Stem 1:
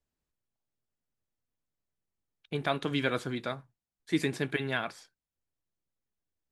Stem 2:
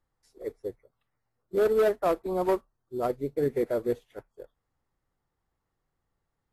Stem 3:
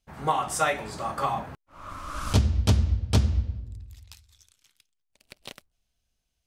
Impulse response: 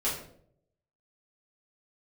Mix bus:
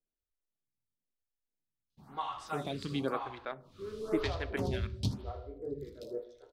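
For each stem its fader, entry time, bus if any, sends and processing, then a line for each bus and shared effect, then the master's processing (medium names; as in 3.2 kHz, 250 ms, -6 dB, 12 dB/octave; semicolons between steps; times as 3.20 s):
-3.0 dB, 0.00 s, send -21.5 dB, no echo send, local Wiener filter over 41 samples
-17.5 dB, 2.25 s, send -5.5 dB, no echo send, low-pass 1.7 kHz
-13.0 dB, 1.90 s, send -16 dB, echo send -8.5 dB, graphic EQ 125/250/500/1000/2000/4000/8000 Hz +5/+4/-9/+3/-4/+11/-4 dB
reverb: on, RT60 0.65 s, pre-delay 5 ms
echo: feedback delay 79 ms, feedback 27%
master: lamp-driven phase shifter 0.98 Hz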